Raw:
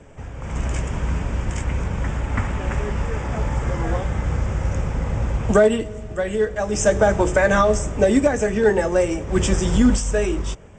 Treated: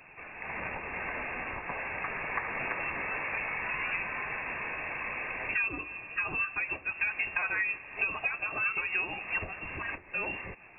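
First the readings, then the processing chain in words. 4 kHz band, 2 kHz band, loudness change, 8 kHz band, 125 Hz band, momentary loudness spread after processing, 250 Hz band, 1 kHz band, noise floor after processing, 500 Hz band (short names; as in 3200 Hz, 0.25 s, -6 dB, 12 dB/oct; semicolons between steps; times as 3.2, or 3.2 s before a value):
under -10 dB, -1.5 dB, -11.5 dB, under -40 dB, -27.0 dB, 7 LU, -25.5 dB, -10.5 dB, -52 dBFS, -24.5 dB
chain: elliptic high-pass 350 Hz, stop band 40 dB; tilt +4.5 dB/oct; compressor 5:1, threshold -28 dBFS, peak gain reduction 16.5 dB; notch 1700 Hz, Q 7.9; inverted band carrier 3100 Hz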